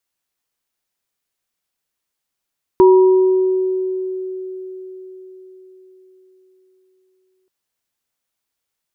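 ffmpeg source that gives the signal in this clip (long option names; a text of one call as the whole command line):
ffmpeg -f lavfi -i "aevalsrc='0.562*pow(10,-3*t/4.83)*sin(2*PI*374*t)+0.2*pow(10,-3*t/1.44)*sin(2*PI*959*t)':duration=4.68:sample_rate=44100" out.wav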